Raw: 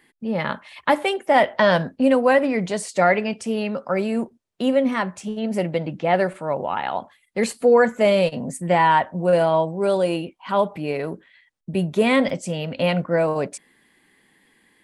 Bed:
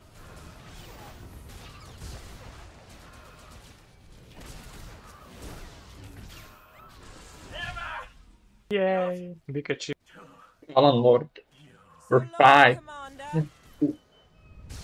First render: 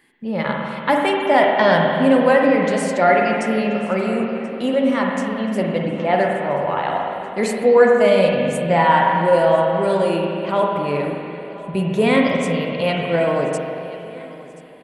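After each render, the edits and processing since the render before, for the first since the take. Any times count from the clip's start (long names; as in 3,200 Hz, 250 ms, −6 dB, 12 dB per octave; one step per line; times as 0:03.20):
repeating echo 1,031 ms, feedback 52%, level −20 dB
spring reverb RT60 2.7 s, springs 41/48 ms, chirp 80 ms, DRR −0.5 dB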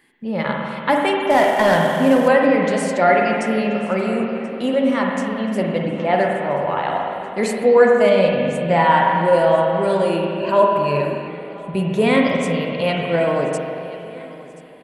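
0:01.30–0:02.28: variable-slope delta modulation 64 kbit/s
0:08.09–0:08.69: high-frequency loss of the air 57 metres
0:10.40–0:11.28: EQ curve with evenly spaced ripples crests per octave 1.4, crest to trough 11 dB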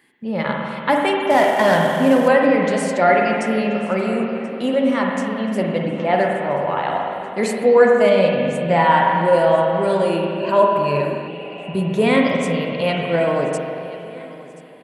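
0:11.30–0:11.78: healed spectral selection 570–3,100 Hz after
high-pass filter 61 Hz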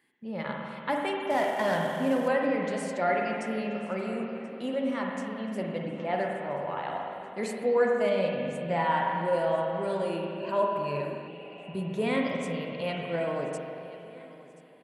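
level −12 dB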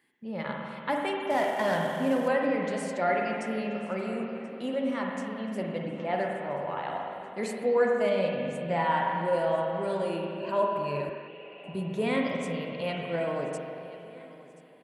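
0:11.09–0:11.64: loudspeaker in its box 150–3,800 Hz, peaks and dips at 180 Hz −10 dB, 280 Hz −9 dB, 770 Hz −6 dB, 1,800 Hz +3 dB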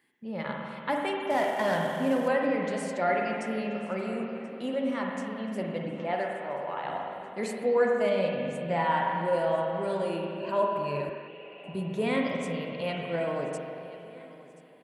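0:06.13–0:06.84: parametric band 65 Hz −14.5 dB 2.7 octaves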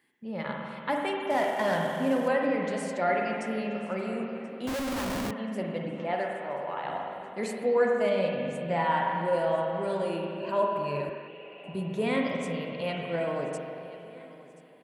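0:04.67–0:05.31: comparator with hysteresis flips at −37.5 dBFS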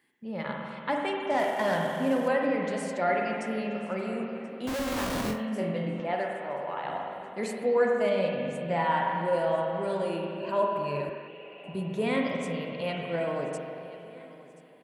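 0:00.70–0:01.39: low-pass filter 8,800 Hz 24 dB per octave
0:04.77–0:06.00: flutter between parallel walls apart 4 metres, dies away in 0.3 s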